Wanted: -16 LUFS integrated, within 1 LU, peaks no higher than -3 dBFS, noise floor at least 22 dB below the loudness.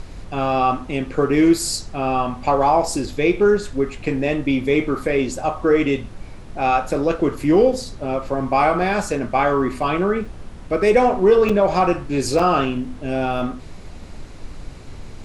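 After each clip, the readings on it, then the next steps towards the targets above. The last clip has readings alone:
dropouts 3; longest dropout 4.6 ms; noise floor -37 dBFS; noise floor target -42 dBFS; loudness -19.5 LUFS; peak -4.0 dBFS; loudness target -16.0 LUFS
-> interpolate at 10.25/11.49/12.39, 4.6 ms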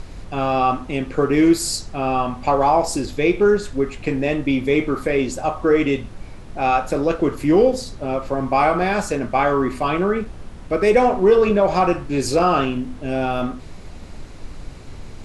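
dropouts 0; noise floor -37 dBFS; noise floor target -42 dBFS
-> noise print and reduce 6 dB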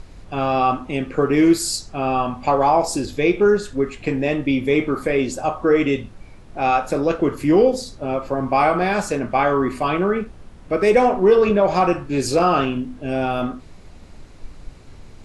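noise floor -43 dBFS; loudness -19.5 LUFS; peak -4.5 dBFS; loudness target -16.0 LUFS
-> gain +3.5 dB; limiter -3 dBFS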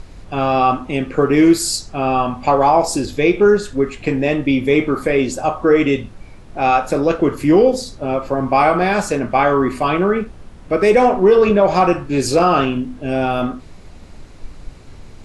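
loudness -16.0 LUFS; peak -3.0 dBFS; noise floor -39 dBFS

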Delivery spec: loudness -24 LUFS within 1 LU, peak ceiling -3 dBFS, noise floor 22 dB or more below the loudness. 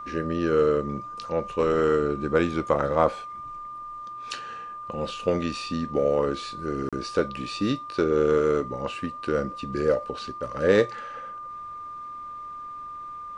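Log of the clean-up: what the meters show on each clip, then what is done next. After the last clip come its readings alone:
dropouts 1; longest dropout 36 ms; steady tone 1200 Hz; tone level -35 dBFS; loudness -26.0 LUFS; peak -5.0 dBFS; loudness target -24.0 LUFS
-> interpolate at 6.89, 36 ms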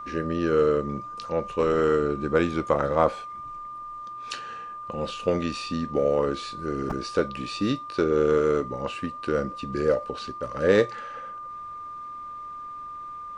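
dropouts 0; steady tone 1200 Hz; tone level -35 dBFS
-> notch 1200 Hz, Q 30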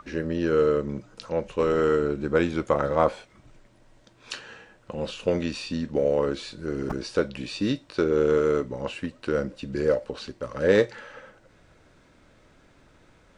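steady tone none; loudness -26.0 LUFS; peak -5.5 dBFS; loudness target -24.0 LUFS
-> gain +2 dB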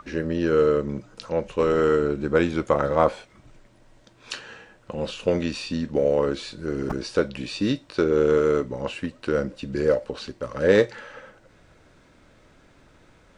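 loudness -24.0 LUFS; peak -3.5 dBFS; noise floor -56 dBFS

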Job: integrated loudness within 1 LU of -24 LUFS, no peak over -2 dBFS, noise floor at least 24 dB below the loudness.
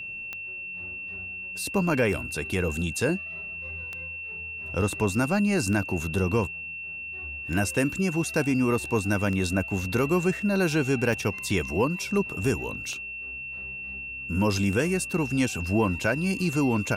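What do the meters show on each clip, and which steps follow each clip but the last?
clicks 10; steady tone 2700 Hz; tone level -34 dBFS; loudness -27.0 LUFS; peak -12.5 dBFS; loudness target -24.0 LUFS
-> de-click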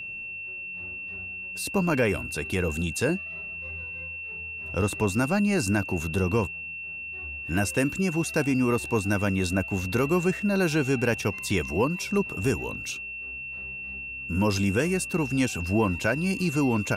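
clicks 0; steady tone 2700 Hz; tone level -34 dBFS
-> notch 2700 Hz, Q 30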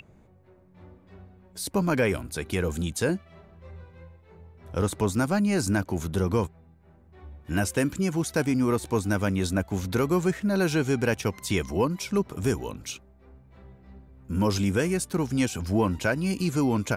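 steady tone none; loudness -26.5 LUFS; peak -13.0 dBFS; loudness target -24.0 LUFS
-> gain +2.5 dB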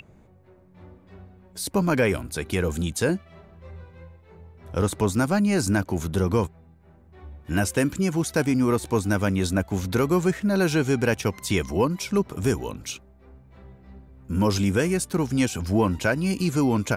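loudness -24.5 LUFS; peak -11.0 dBFS; noise floor -54 dBFS

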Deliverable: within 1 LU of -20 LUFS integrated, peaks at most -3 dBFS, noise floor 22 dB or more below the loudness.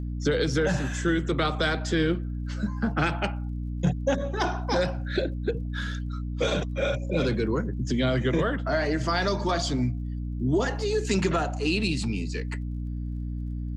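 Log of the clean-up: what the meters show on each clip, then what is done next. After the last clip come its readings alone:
ticks 32/s; hum 60 Hz; harmonics up to 300 Hz; hum level -29 dBFS; loudness -27.5 LUFS; peak -12.5 dBFS; loudness target -20.0 LUFS
-> de-click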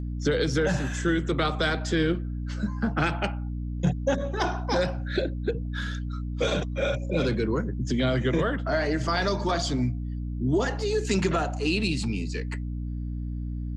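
ticks 0.15/s; hum 60 Hz; harmonics up to 300 Hz; hum level -29 dBFS
-> de-hum 60 Hz, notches 5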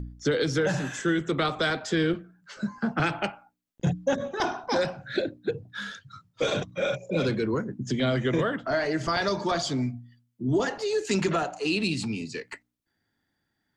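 hum none; loudness -28.0 LUFS; peak -13.5 dBFS; loudness target -20.0 LUFS
-> gain +8 dB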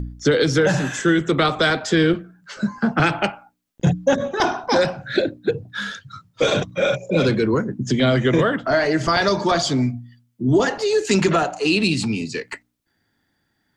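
loudness -20.0 LUFS; peak -5.5 dBFS; noise floor -70 dBFS

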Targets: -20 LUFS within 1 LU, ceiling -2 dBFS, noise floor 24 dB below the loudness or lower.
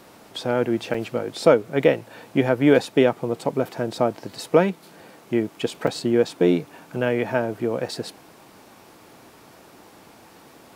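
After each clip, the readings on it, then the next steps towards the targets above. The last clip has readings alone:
dropouts 3; longest dropout 4.4 ms; loudness -22.5 LUFS; peak -2.5 dBFS; loudness target -20.0 LUFS
-> interpolate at 0.94/5.87/7.88, 4.4 ms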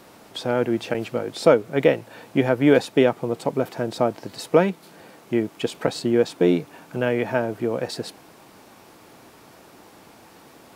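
dropouts 0; loudness -22.5 LUFS; peak -2.5 dBFS; loudness target -20.0 LUFS
-> gain +2.5 dB; limiter -2 dBFS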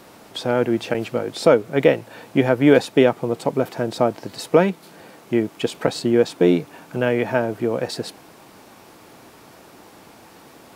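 loudness -20.5 LUFS; peak -2.0 dBFS; noise floor -47 dBFS

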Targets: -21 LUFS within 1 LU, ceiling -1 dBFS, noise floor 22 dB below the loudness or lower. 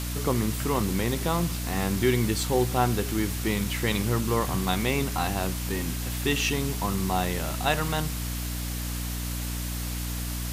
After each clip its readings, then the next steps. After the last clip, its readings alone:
hum 60 Hz; harmonics up to 300 Hz; hum level -29 dBFS; noise floor -32 dBFS; noise floor target -50 dBFS; loudness -27.5 LUFS; peak -8.5 dBFS; loudness target -21.0 LUFS
-> de-hum 60 Hz, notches 5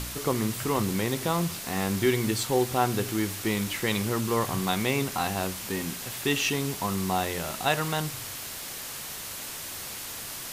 hum none; noise floor -38 dBFS; noise floor target -51 dBFS
-> noise print and reduce 13 dB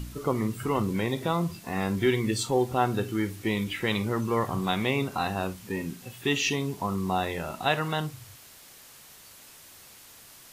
noise floor -51 dBFS; loudness -28.5 LUFS; peak -10.5 dBFS; loudness target -21.0 LUFS
-> gain +7.5 dB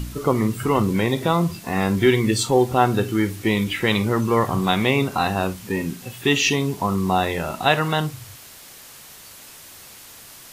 loudness -21.0 LUFS; peak -3.0 dBFS; noise floor -43 dBFS

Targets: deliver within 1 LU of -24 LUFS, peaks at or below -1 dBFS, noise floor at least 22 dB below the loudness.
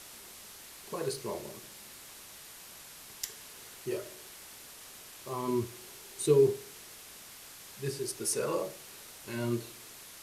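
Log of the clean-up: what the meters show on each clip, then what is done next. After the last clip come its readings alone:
noise floor -50 dBFS; noise floor target -56 dBFS; loudness -33.5 LUFS; peak -13.5 dBFS; loudness target -24.0 LUFS
-> noise print and reduce 6 dB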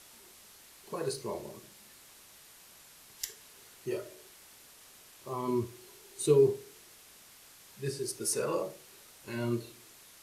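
noise floor -56 dBFS; loudness -33.5 LUFS; peak -13.5 dBFS; loudness target -24.0 LUFS
-> gain +9.5 dB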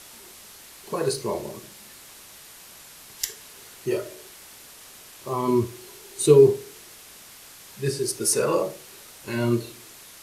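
loudness -24.0 LUFS; peak -4.0 dBFS; noise floor -47 dBFS

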